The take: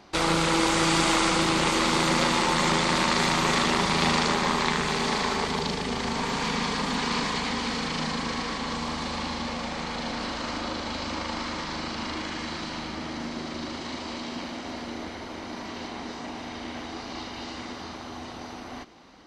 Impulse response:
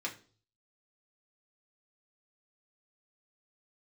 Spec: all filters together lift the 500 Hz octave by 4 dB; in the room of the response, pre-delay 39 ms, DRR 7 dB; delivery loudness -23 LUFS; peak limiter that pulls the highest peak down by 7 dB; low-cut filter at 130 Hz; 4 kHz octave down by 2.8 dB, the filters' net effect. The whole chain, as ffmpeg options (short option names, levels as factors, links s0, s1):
-filter_complex "[0:a]highpass=130,equalizer=f=500:t=o:g=5,equalizer=f=4000:t=o:g=-3.5,alimiter=limit=0.2:level=0:latency=1,asplit=2[s0][s1];[1:a]atrim=start_sample=2205,adelay=39[s2];[s1][s2]afir=irnorm=-1:irlink=0,volume=0.335[s3];[s0][s3]amix=inputs=2:normalize=0,volume=1.58"